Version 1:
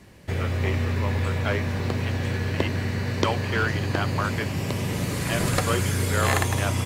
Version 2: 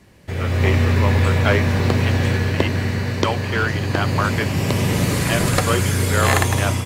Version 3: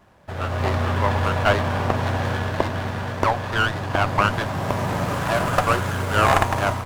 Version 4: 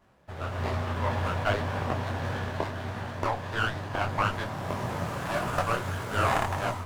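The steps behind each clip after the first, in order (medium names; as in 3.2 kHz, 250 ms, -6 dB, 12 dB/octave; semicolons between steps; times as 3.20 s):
level rider; trim -1 dB
high-order bell 980 Hz +11.5 dB; sliding maximum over 9 samples; trim -7 dB
detune thickener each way 57 cents; trim -4.5 dB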